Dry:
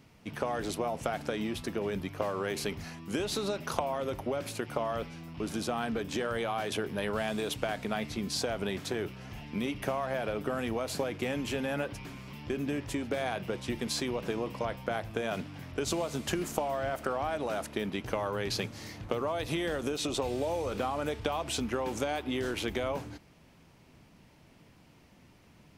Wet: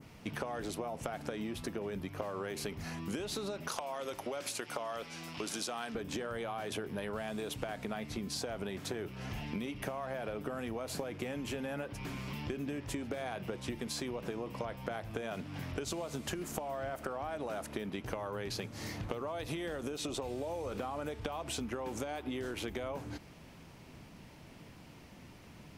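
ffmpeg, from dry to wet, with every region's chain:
ffmpeg -i in.wav -filter_complex "[0:a]asettb=1/sr,asplit=3[link_01][link_02][link_03];[link_01]atrim=end=3.684[link_04];[link_02]atrim=start=3.68:end=5.95,asetpts=PTS-STARTPTS,afade=type=in:duration=0.004:curve=qsin,afade=type=out:start_time=2.266:duration=0.004:curve=qsin,lowpass=6600,aemphasis=mode=production:type=riaa,asoftclip=type=hard:threshold=-17dB[link_05];[link_03]atrim=start=5.946[link_06];[link_04][link_05]acrossfade=duration=0.004:curve1=hsin:curve2=qsin[link_07];[link_07][link_06]acrossfade=duration=0.004:curve1=qsin:curve2=hsin,adynamicequalizer=threshold=0.00355:dfrequency=3800:dqfactor=0.71:tfrequency=3800:tqfactor=0.71:attack=5:release=100:ratio=0.375:range=1.5:mode=cutabove:tftype=bell,acompressor=threshold=-41dB:ratio=6,volume=5dB" out.wav

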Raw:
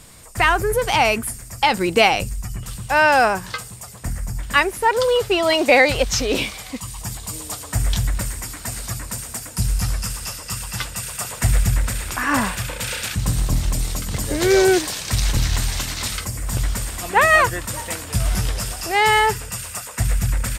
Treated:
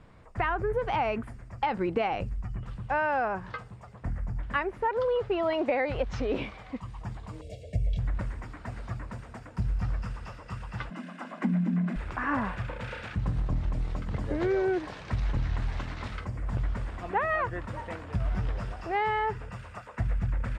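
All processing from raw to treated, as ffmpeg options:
ffmpeg -i in.wav -filter_complex "[0:a]asettb=1/sr,asplit=3[link_01][link_02][link_03];[link_01]atrim=end=7.414[link_04];[link_02]atrim=start=7.41:end=7.99,asetpts=PTS-STARTPTS,afade=type=in:duration=0.004:curve=qsin,afade=type=out:start_time=0.576:duration=0.004:curve=qsin,asuperstop=centerf=1200:order=8:qfactor=0.76,aecho=1:1:1.8:0.77,atrim=end_sample=25578[link_05];[link_03]atrim=start=7.986[link_06];[link_04][link_05]acrossfade=duration=0.004:curve1=hsin:curve2=qsin[link_07];[link_07][link_06]acrossfade=duration=0.004:curve1=qsin:curve2=hsin,asettb=1/sr,asplit=3[link_08][link_09][link_10];[link_08]atrim=end=10.904[link_11];[link_09]atrim=start=10.9:end=11.96,asetpts=PTS-STARTPTS,afade=type=in:duration=0.004:curve=qsin,afade=type=out:start_time=1.056:duration=0.004:curve=qsin,highshelf=frequency=5000:gain=-5.5,aecho=1:1:2.1:0.31,atrim=end_sample=46746,afreqshift=130[link_12];[link_10]atrim=start=11.956[link_13];[link_11][link_12]acrossfade=duration=0.004:curve1=hsin:curve2=qsin[link_14];[link_14][link_13]acrossfade=duration=0.004:curve1=qsin:curve2=hsin,lowpass=1600,acompressor=threshold=-18dB:ratio=6,volume=-6dB" out.wav

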